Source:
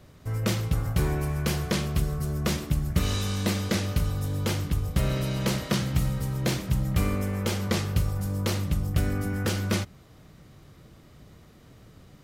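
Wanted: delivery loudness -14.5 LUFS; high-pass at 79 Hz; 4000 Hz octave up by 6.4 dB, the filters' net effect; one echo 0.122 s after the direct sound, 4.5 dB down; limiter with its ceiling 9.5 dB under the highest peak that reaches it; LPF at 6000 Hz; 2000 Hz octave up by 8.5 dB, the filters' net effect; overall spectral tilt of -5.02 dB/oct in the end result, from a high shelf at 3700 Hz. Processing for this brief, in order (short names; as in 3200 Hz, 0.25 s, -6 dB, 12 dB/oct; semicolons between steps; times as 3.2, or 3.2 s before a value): HPF 79 Hz; LPF 6000 Hz; bell 2000 Hz +8.5 dB; high shelf 3700 Hz +5 dB; bell 4000 Hz +3 dB; limiter -17 dBFS; echo 0.122 s -4.5 dB; gain +12 dB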